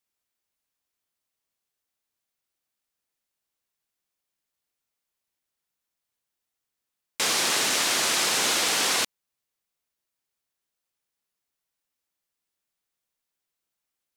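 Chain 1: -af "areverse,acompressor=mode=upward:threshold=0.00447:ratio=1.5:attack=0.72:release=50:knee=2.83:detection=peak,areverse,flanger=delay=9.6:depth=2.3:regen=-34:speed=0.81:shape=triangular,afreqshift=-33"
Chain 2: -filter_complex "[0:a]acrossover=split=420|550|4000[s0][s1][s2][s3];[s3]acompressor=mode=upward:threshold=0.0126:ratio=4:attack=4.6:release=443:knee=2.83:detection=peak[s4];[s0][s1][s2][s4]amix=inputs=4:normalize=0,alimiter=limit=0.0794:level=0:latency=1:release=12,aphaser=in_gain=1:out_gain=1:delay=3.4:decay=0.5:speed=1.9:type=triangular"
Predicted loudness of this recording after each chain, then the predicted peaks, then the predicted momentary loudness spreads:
-26.0 LUFS, -28.0 LUFS; -15.0 dBFS, -18.5 dBFS; 4 LU, 6 LU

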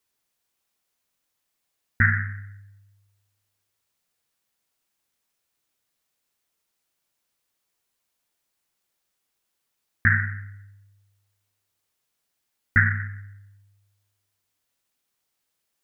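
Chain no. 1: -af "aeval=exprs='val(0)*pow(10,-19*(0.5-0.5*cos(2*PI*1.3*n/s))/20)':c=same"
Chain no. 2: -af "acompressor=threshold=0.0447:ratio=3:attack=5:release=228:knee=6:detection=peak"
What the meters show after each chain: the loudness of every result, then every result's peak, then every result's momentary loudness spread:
-30.0 LUFS, -33.0 LUFS; -6.0 dBFS, -12.5 dBFS; 17 LU, 18 LU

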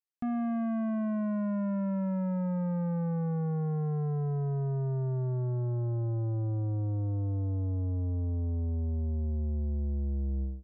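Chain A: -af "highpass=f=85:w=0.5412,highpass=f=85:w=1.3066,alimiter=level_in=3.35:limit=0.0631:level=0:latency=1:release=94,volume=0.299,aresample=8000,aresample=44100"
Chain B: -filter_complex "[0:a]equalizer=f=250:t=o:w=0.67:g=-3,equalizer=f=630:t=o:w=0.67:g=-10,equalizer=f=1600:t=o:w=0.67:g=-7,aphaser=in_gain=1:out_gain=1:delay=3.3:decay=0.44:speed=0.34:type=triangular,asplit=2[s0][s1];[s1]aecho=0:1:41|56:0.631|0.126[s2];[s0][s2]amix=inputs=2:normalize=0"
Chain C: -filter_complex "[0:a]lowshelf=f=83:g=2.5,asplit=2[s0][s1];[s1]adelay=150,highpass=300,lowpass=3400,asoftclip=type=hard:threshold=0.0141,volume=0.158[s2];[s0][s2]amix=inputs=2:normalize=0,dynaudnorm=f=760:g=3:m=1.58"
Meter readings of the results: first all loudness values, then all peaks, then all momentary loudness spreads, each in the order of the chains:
-40.5 LUFS, -30.0 LUFS, -27.5 LUFS; -34.5 dBFS, -20.0 dBFS, -23.0 dBFS; 3 LU, 11 LU, 2 LU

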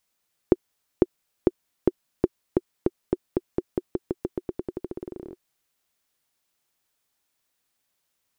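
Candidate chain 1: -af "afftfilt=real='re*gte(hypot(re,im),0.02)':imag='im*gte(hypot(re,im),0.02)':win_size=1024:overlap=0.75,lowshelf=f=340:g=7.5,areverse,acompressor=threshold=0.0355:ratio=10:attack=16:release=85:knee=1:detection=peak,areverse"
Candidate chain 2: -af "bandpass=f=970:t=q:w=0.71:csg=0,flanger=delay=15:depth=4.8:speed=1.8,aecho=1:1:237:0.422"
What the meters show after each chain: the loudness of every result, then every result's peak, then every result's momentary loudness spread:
-37.0 LUFS, -39.0 LUFS; -17.5 dBFS, -14.0 dBFS; 3 LU, 10 LU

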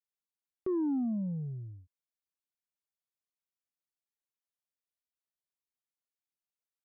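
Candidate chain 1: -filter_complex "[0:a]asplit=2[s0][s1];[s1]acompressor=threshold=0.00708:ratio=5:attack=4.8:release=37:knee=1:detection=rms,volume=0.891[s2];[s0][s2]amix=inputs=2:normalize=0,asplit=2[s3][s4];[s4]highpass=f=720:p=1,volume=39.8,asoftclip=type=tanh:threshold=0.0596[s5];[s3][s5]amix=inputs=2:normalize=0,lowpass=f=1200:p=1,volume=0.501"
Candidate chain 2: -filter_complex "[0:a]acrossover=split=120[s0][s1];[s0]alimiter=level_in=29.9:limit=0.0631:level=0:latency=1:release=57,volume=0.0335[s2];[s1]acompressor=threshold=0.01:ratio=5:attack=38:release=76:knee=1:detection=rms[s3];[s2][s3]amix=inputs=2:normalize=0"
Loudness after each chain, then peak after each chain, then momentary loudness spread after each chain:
-31.5 LUFS, -41.0 LUFS; -24.5 dBFS, -26.5 dBFS; 9 LU, 11 LU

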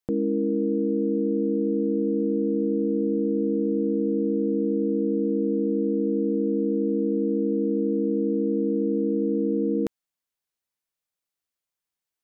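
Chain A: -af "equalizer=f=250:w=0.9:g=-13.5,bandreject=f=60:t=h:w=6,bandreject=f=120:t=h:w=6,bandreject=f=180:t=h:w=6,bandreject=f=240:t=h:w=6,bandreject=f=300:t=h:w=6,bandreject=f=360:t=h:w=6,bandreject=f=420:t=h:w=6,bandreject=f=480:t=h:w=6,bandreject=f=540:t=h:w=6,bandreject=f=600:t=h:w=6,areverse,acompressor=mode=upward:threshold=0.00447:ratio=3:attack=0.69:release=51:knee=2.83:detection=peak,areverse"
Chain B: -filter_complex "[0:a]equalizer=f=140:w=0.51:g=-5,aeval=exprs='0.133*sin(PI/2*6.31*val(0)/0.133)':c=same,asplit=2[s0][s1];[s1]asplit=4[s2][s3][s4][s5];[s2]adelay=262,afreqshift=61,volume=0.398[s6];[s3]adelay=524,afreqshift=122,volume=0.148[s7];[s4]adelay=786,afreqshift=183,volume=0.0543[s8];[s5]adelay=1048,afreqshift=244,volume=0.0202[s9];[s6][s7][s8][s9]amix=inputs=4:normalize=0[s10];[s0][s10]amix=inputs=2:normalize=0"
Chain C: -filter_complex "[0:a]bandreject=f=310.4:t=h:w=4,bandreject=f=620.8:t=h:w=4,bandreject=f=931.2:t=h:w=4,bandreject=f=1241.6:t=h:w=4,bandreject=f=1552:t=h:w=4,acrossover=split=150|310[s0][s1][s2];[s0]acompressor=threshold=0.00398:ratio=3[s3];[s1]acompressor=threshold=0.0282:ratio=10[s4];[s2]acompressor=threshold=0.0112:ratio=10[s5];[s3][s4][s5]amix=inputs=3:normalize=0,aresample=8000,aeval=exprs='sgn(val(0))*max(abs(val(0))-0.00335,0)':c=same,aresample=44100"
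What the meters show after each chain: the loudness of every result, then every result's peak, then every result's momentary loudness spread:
-34.0 LUFS, -19.5 LUFS, -33.0 LUFS; -20.0 dBFS, -11.0 dBFS, -21.5 dBFS; 0 LU, 0 LU, 0 LU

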